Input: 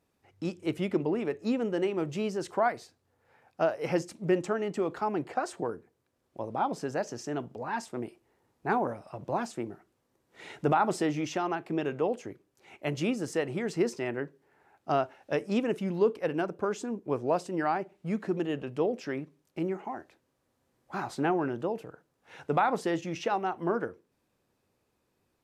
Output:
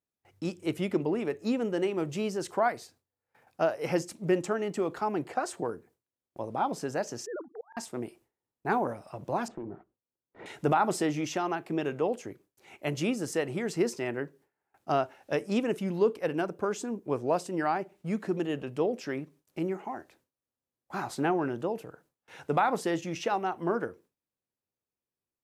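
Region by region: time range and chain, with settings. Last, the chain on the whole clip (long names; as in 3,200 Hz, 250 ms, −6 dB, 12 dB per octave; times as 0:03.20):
0:07.26–0:07.77: three sine waves on the formant tracks + Butterworth low-pass 1,900 Hz 96 dB per octave + volume swells 662 ms
0:09.48–0:10.46: leveller curve on the samples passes 2 + low-pass filter 1,000 Hz + downward compressor 5 to 1, threshold −36 dBFS
whole clip: noise gate with hold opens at −52 dBFS; high-shelf EQ 8,200 Hz +9.5 dB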